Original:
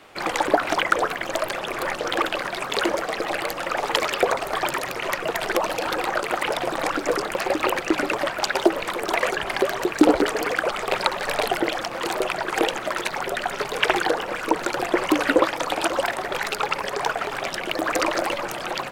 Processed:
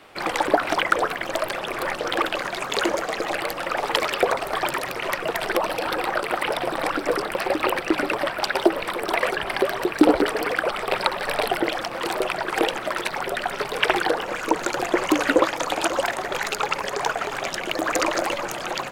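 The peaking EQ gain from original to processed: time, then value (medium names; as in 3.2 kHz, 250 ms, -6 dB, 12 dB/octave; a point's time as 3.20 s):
peaking EQ 6.7 kHz 0.27 oct
-4.5 dB
from 2.35 s +3.5 dB
from 3.35 s -5.5 dB
from 5.49 s -12 dB
from 11.64 s -6 dB
from 14.23 s +5.5 dB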